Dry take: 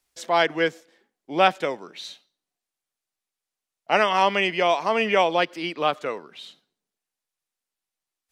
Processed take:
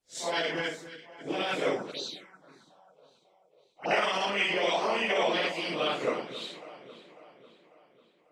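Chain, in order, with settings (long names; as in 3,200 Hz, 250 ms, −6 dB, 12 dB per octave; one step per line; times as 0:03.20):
random phases in long frames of 200 ms
octave-band graphic EQ 125/250/500/2,000/4,000/8,000 Hz +11/+6/+6/+4/+6/+9 dB
0:00.66–0:01.41: downward compressor 2.5 to 1, threshold −20 dBFS, peak gain reduction 6 dB
brickwall limiter −9 dBFS, peak gain reduction 7.5 dB
on a send: delay that swaps between a low-pass and a high-pass 273 ms, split 1,700 Hz, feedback 69%, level −12 dB
0:01.91–0:03.91: on the sum: phaser swept by the level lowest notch 230 Hz, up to 2,100 Hz, full sweep at −25 dBFS
harmonic and percussive parts rebalanced harmonic −14 dB
one half of a high-frequency compander decoder only
level −3 dB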